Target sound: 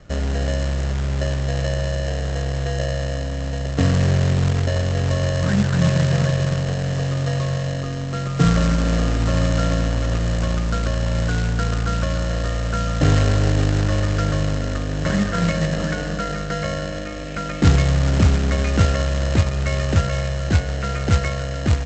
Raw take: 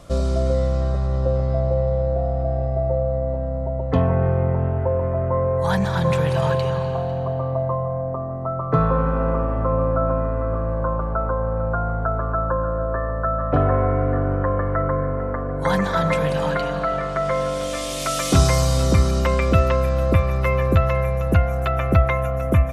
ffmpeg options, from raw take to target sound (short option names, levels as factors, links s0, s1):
-filter_complex "[0:a]lowpass=f=2100:w=0.5412,lowpass=f=2100:w=1.3066,equalizer=f=560:t=o:w=1.1:g=-4,bandreject=f=60:t=h:w=6,bandreject=f=120:t=h:w=6,bandreject=f=180:t=h:w=6,bandreject=f=240:t=h:w=6,bandreject=f=300:t=h:w=6,acrossover=split=360|1200[s0][s1][s2];[s0]dynaudnorm=f=480:g=17:m=1.78[s3];[s1]acrusher=samples=39:mix=1:aa=0.000001[s4];[s3][s4][s2]amix=inputs=3:normalize=0,asetrate=45864,aresample=44100,aresample=16000,acrusher=bits=3:mode=log:mix=0:aa=0.000001,aresample=44100"